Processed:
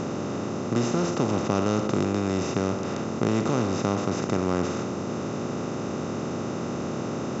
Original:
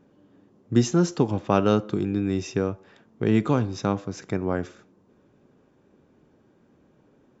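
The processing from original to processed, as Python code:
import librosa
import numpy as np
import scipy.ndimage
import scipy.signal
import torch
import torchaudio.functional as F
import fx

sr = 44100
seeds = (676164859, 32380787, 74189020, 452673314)

y = fx.bin_compress(x, sr, power=0.2)
y = y * 10.0 ** (-9.0 / 20.0)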